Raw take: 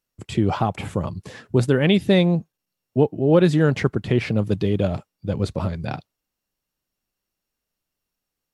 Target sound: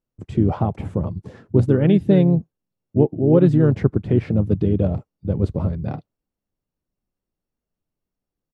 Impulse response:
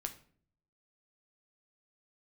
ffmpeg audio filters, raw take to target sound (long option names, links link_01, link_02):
-filter_complex "[0:a]tiltshelf=frequency=1100:gain=9.5,asplit=2[link_01][link_02];[link_02]asetrate=35002,aresample=44100,atempo=1.25992,volume=-8dB[link_03];[link_01][link_03]amix=inputs=2:normalize=0,volume=-6.5dB"